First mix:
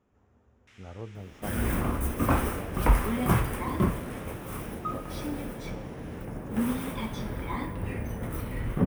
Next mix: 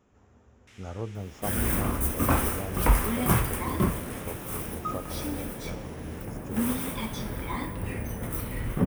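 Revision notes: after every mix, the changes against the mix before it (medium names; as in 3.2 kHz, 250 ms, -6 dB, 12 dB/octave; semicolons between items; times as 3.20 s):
speech +5.5 dB; master: add treble shelf 4.4 kHz +9.5 dB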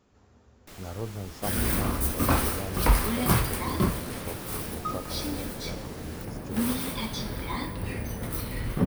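first sound: remove Butterworth band-pass 3.4 kHz, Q 0.8; master: add peaking EQ 4.4 kHz +12.5 dB 0.51 oct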